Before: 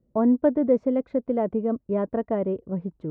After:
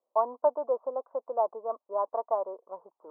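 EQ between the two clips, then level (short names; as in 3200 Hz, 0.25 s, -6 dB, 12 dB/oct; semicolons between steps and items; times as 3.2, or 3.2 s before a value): HPF 800 Hz 24 dB/oct; elliptic low-pass 1100 Hz, stop band 50 dB; +8.5 dB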